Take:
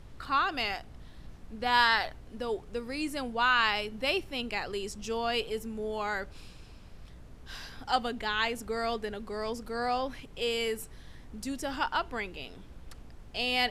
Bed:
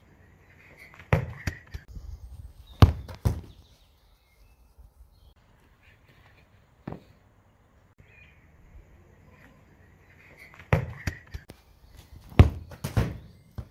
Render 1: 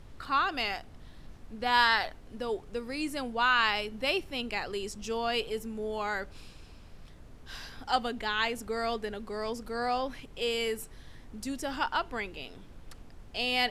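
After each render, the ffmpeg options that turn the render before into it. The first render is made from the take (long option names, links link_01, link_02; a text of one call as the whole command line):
ffmpeg -i in.wav -af "bandreject=frequency=60:width_type=h:width=4,bandreject=frequency=120:width_type=h:width=4,bandreject=frequency=180:width_type=h:width=4" out.wav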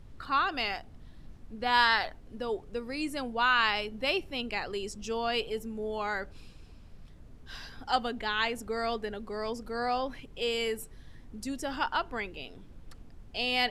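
ffmpeg -i in.wav -af "afftdn=noise_reduction=6:noise_floor=-51" out.wav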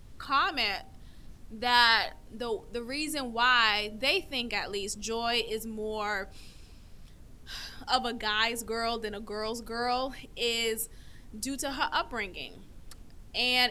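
ffmpeg -i in.wav -af "highshelf=frequency=4300:gain=11.5,bandreject=frequency=154.6:width_type=h:width=4,bandreject=frequency=309.2:width_type=h:width=4,bandreject=frequency=463.8:width_type=h:width=4,bandreject=frequency=618.4:width_type=h:width=4,bandreject=frequency=773:width_type=h:width=4,bandreject=frequency=927.6:width_type=h:width=4" out.wav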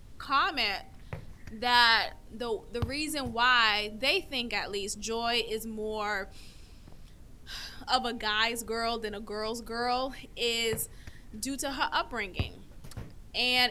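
ffmpeg -i in.wav -i bed.wav -filter_complex "[1:a]volume=-17.5dB[link_01];[0:a][link_01]amix=inputs=2:normalize=0" out.wav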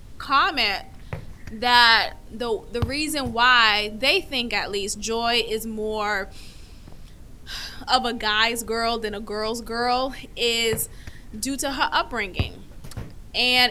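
ffmpeg -i in.wav -af "volume=7.5dB,alimiter=limit=-1dB:level=0:latency=1" out.wav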